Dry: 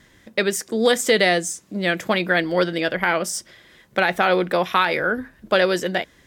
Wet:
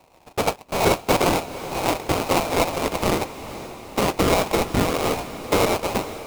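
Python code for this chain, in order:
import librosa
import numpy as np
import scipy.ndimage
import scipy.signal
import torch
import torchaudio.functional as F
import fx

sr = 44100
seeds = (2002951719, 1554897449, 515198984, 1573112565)

y = fx.freq_invert(x, sr, carrier_hz=2700)
y = fx.sample_hold(y, sr, seeds[0], rate_hz=1700.0, jitter_pct=20)
y = fx.echo_diffused(y, sr, ms=458, feedback_pct=59, wet_db=-13.5)
y = y * 10.0 ** (-1.5 / 20.0)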